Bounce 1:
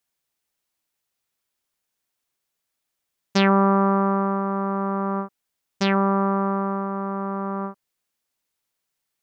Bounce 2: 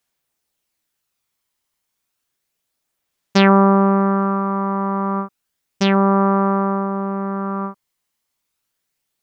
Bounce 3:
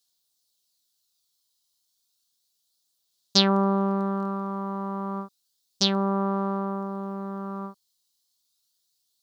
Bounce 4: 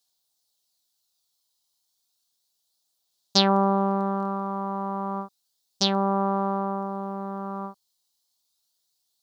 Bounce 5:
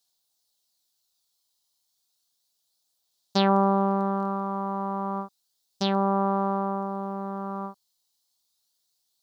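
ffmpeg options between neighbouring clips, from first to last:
ffmpeg -i in.wav -af "aphaser=in_gain=1:out_gain=1:delay=1:decay=0.24:speed=0.31:type=sinusoidal,volume=3.5dB" out.wav
ffmpeg -i in.wav -af "highshelf=frequency=3000:width_type=q:width=3:gain=11,volume=-9.5dB" out.wav
ffmpeg -i in.wav -af "equalizer=frequency=770:width=1.7:gain=7.5,volume=-1dB" out.wav
ffmpeg -i in.wav -filter_complex "[0:a]acrossover=split=3000[link_01][link_02];[link_02]acompressor=threshold=-35dB:ratio=4:attack=1:release=60[link_03];[link_01][link_03]amix=inputs=2:normalize=0" out.wav

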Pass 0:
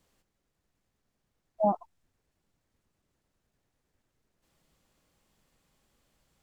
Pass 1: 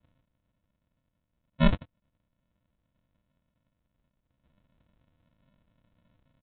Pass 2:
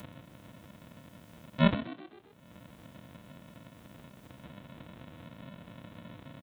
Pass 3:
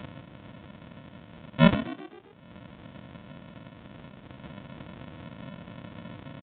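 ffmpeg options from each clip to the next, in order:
ffmpeg -i in.wav -af "aemphasis=mode=production:type=riaa,aresample=8000,acrusher=samples=20:mix=1:aa=0.000001,aresample=44100,volume=7dB" out.wav
ffmpeg -i in.wav -filter_complex "[0:a]highpass=120,acompressor=mode=upward:threshold=-27dB:ratio=2.5,asplit=6[link_01][link_02][link_03][link_04][link_05][link_06];[link_02]adelay=128,afreqshift=46,volume=-14dB[link_07];[link_03]adelay=256,afreqshift=92,volume=-20.2dB[link_08];[link_04]adelay=384,afreqshift=138,volume=-26.4dB[link_09];[link_05]adelay=512,afreqshift=184,volume=-32.6dB[link_10];[link_06]adelay=640,afreqshift=230,volume=-38.8dB[link_11];[link_01][link_07][link_08][link_09][link_10][link_11]amix=inputs=6:normalize=0" out.wav
ffmpeg -i in.wav -af "aresample=8000,aresample=44100,volume=5.5dB" out.wav

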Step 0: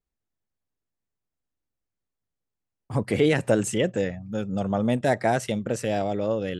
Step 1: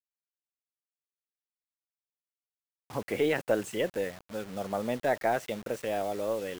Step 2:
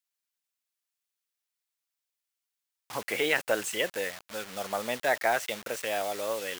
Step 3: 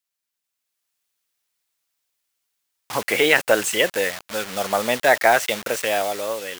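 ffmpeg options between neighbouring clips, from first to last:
ffmpeg -i in.wav -af "bass=frequency=250:gain=-13,treble=frequency=4000:gain=-10,aeval=exprs='0.316*(cos(1*acos(clip(val(0)/0.316,-1,1)))-cos(1*PI/2))+0.00398*(cos(6*acos(clip(val(0)/0.316,-1,1)))-cos(6*PI/2))':channel_layout=same,acrusher=bits=6:mix=0:aa=0.000001,volume=-4dB" out.wav
ffmpeg -i in.wav -af "tiltshelf=frequency=640:gain=-9" out.wav
ffmpeg -i in.wav -af "dynaudnorm=framelen=200:gausssize=7:maxgain=7dB,volume=3.5dB" out.wav

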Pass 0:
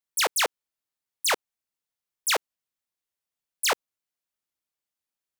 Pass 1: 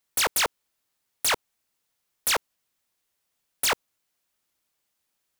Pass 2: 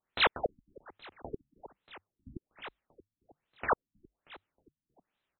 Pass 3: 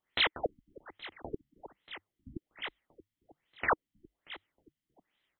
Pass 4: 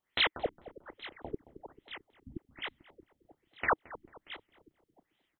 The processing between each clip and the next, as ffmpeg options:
ffmpeg -i in.wav -filter_complex "[0:a]asplit=2[link_01][link_02];[link_02]alimiter=limit=-24dB:level=0:latency=1:release=21,volume=-3dB[link_03];[link_01][link_03]amix=inputs=2:normalize=0,aeval=exprs='0.0668*(abs(mod(val(0)/0.0668+3,4)-2)-1)':channel_layout=same,volume=7dB" out.wav
ffmpeg -i in.wav -filter_complex "[0:a]asplit=5[link_01][link_02][link_03][link_04][link_05];[link_02]adelay=316,afreqshift=-52,volume=-19dB[link_06];[link_03]adelay=632,afreqshift=-104,volume=-24.8dB[link_07];[link_04]adelay=948,afreqshift=-156,volume=-30.7dB[link_08];[link_05]adelay=1264,afreqshift=-208,volume=-36.5dB[link_09];[link_01][link_06][link_07][link_08][link_09]amix=inputs=5:normalize=0,afftfilt=real='re*lt(b*sr/1024,280*pow(4200/280,0.5+0.5*sin(2*PI*1.2*pts/sr)))':imag='im*lt(b*sr/1024,280*pow(4200/280,0.5+0.5*sin(2*PI*1.2*pts/sr)))':win_size=1024:overlap=0.75" out.wav
ffmpeg -i in.wav -af "equalizer=frequency=315:width_type=o:width=0.33:gain=4,equalizer=frequency=2000:width_type=o:width=0.33:gain=10,equalizer=frequency=3150:width_type=o:width=0.33:gain=10,alimiter=limit=-18dB:level=0:latency=1:release=273" out.wav
ffmpeg -i in.wav -filter_complex "[0:a]asplit=2[link_01][link_02];[link_02]adelay=221,lowpass=frequency=870:poles=1,volume=-14.5dB,asplit=2[link_03][link_04];[link_04]adelay=221,lowpass=frequency=870:poles=1,volume=0.52,asplit=2[link_05][link_06];[link_06]adelay=221,lowpass=frequency=870:poles=1,volume=0.52,asplit=2[link_07][link_08];[link_08]adelay=221,lowpass=frequency=870:poles=1,volume=0.52,asplit=2[link_09][link_10];[link_10]adelay=221,lowpass=frequency=870:poles=1,volume=0.52[link_11];[link_01][link_03][link_05][link_07][link_09][link_11]amix=inputs=6:normalize=0" out.wav

